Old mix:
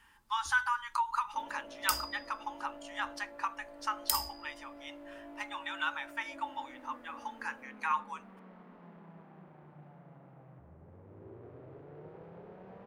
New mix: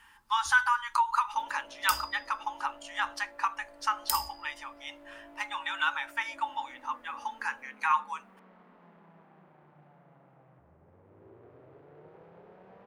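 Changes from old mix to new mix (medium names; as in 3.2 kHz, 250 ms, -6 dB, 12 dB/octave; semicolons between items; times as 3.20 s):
speech +5.5 dB; second sound: add bass shelf 380 Hz -7.5 dB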